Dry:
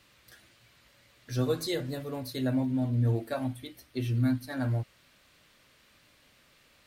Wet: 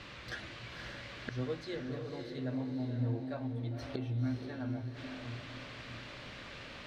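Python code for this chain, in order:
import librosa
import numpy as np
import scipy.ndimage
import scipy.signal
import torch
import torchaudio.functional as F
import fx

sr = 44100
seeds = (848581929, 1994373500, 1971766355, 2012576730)

y = fx.gate_flip(x, sr, shuts_db=-37.0, range_db=-24)
y = fx.air_absorb(y, sr, metres=160.0)
y = fx.echo_diffused(y, sr, ms=531, feedback_pct=43, wet_db=-4.5)
y = y * librosa.db_to_amplitude(15.5)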